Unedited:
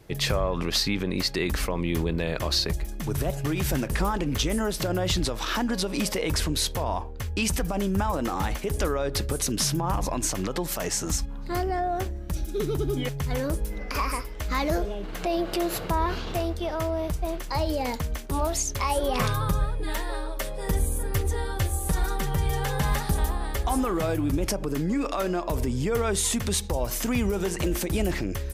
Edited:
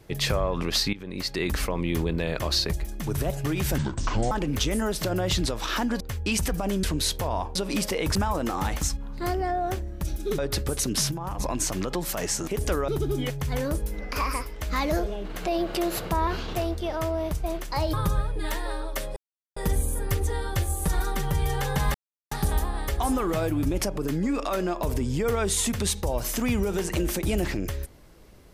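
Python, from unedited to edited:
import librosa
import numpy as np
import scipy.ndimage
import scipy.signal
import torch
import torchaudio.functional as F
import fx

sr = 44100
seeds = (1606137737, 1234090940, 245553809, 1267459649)

y = fx.edit(x, sr, fx.fade_in_from(start_s=0.93, length_s=0.55, floor_db=-17.0),
    fx.speed_span(start_s=3.78, length_s=0.32, speed=0.6),
    fx.swap(start_s=5.79, length_s=0.6, other_s=7.11, other_length_s=0.83),
    fx.swap(start_s=8.6, length_s=0.41, other_s=11.1, other_length_s=1.57),
    fx.clip_gain(start_s=9.74, length_s=0.28, db=-6.5),
    fx.cut(start_s=17.72, length_s=1.65),
    fx.insert_silence(at_s=20.6, length_s=0.4),
    fx.insert_silence(at_s=22.98, length_s=0.37), tone=tone)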